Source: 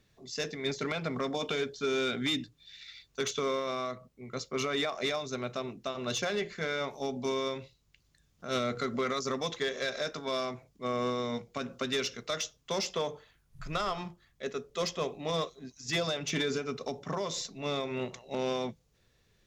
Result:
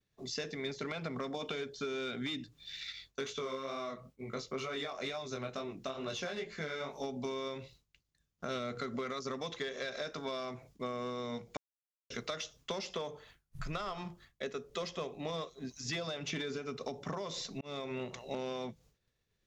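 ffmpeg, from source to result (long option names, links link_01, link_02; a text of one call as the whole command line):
ffmpeg -i in.wav -filter_complex "[0:a]asettb=1/sr,asplit=3[link_01][link_02][link_03];[link_01]atrim=end=2.924[link_04];[link_02]atrim=start=2.92:end=7.04,asetpts=PTS-STARTPTS,afade=type=in:duration=0.004:curve=qsin,afade=type=out:start_time=4.116:duration=0.004:curve=qsin,flanger=delay=18.5:depth=4.7:speed=2.2[link_05];[link_03]atrim=start=7.036[link_06];[link_04][link_05]acrossfade=duration=0.004:curve1=hsin:curve2=qsin[link_07];[link_07][link_06]acrossfade=duration=0.004:curve1=qsin:curve2=hsin,asplit=4[link_08][link_09][link_10][link_11];[link_08]atrim=end=11.57,asetpts=PTS-STARTPTS,afade=type=out:start_time=11.566:duration=0.004:curve=hsin[link_12];[link_09]atrim=start=11.57:end=12.1,asetpts=PTS-STARTPTS,volume=0[link_13];[link_10]atrim=start=12.1:end=17.61,asetpts=PTS-STARTPTS,afade=type=in:duration=0.004:curve=hsin,afade=type=out:start_time=5.506:duration=0.004:curve=hsin[link_14];[link_11]atrim=start=17.61,asetpts=PTS-STARTPTS,afade=type=in:duration=0.56[link_15];[link_12][link_13][link_14][link_15]concat=n=4:v=0:a=1,acrossover=split=5500[link_16][link_17];[link_17]acompressor=threshold=-54dB:ratio=4:attack=1:release=60[link_18];[link_16][link_18]amix=inputs=2:normalize=0,agate=range=-33dB:threshold=-56dB:ratio=3:detection=peak,acompressor=threshold=-42dB:ratio=6,volume=5.5dB" out.wav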